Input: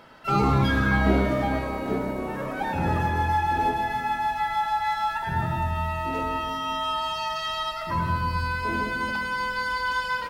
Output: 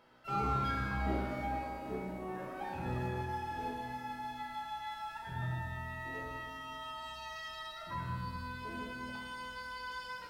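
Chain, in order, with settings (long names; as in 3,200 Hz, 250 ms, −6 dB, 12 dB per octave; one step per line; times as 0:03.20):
tuned comb filter 62 Hz, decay 1.3 s, harmonics all, mix 90%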